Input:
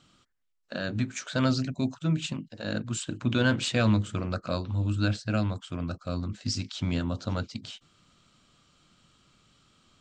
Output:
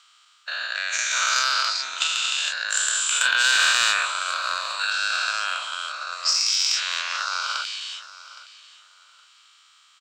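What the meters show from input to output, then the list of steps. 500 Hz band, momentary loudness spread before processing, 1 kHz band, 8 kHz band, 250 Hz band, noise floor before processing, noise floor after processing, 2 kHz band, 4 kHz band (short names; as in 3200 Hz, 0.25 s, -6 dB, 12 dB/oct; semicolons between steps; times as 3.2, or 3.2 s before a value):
-10.0 dB, 10 LU, +12.0 dB, +17.5 dB, under -30 dB, -70 dBFS, -57 dBFS, +14.5 dB, +15.5 dB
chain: spectral dilation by 0.48 s; HPF 1100 Hz 24 dB/oct; in parallel at -6 dB: overloaded stage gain 19.5 dB; on the sum: feedback echo 0.816 s, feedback 23%, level -17 dB; transient shaper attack +7 dB, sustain +2 dB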